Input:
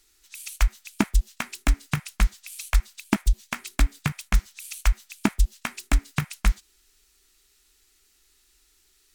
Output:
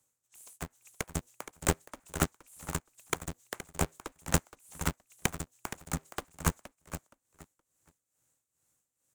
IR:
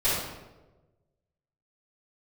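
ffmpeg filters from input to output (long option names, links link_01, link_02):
-filter_complex "[0:a]highshelf=frequency=5900:width_type=q:width=3:gain=6.5,aeval=exprs='0.75*(cos(1*acos(clip(val(0)/0.75,-1,1)))-cos(1*PI/2))+0.075*(cos(3*acos(clip(val(0)/0.75,-1,1)))-cos(3*PI/2))+0.0944*(cos(7*acos(clip(val(0)/0.75,-1,1)))-cos(7*PI/2))':channel_layout=same,acrossover=split=410|1000[link_01][link_02][link_03];[link_02]aeval=exprs='0.126*sin(PI/2*4.47*val(0)/0.126)':channel_layout=same[link_04];[link_01][link_04][link_03]amix=inputs=3:normalize=0,tremolo=f=2.3:d=0.78,asplit=2[link_05][link_06];[link_06]aecho=0:1:470|940|1410:0.251|0.0553|0.0122[link_07];[link_05][link_07]amix=inputs=2:normalize=0,aeval=exprs='val(0)*sgn(sin(2*PI*120*n/s))':channel_layout=same,volume=-4.5dB"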